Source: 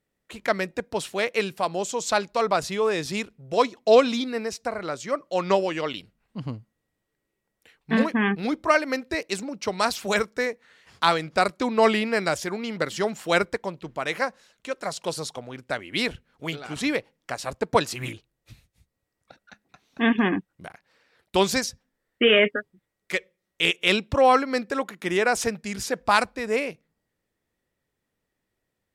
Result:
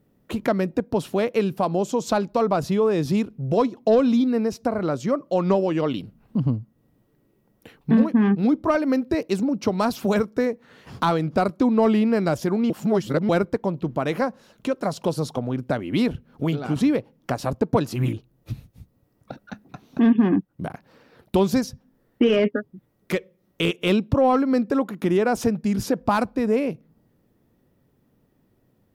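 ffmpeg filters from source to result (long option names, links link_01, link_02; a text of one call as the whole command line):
ffmpeg -i in.wav -filter_complex "[0:a]asplit=3[link_01][link_02][link_03];[link_01]atrim=end=12.702[link_04];[link_02]atrim=start=12.698:end=13.292,asetpts=PTS-STARTPTS,areverse[link_05];[link_03]atrim=start=13.288[link_06];[link_04][link_05]acrossfade=duration=0.004:curve1=hsin:curve2=hsin[link_07];[link_07][link_06]acrossfade=duration=0.004:curve1=hsin:curve2=hsin,acontrast=82,equalizer=frequency=125:width_type=o:width=1:gain=7,equalizer=frequency=250:width_type=o:width=1:gain=7,equalizer=frequency=2000:width_type=o:width=1:gain=-9,equalizer=frequency=4000:width_type=o:width=1:gain=-5,equalizer=frequency=8000:width_type=o:width=1:gain=-11,acompressor=threshold=-33dB:ratio=2,volume=6dB" out.wav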